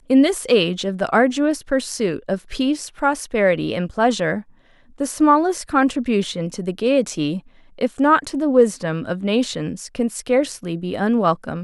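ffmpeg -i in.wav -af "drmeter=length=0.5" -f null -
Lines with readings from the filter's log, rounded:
Channel 1: DR: 9.2
Overall DR: 9.2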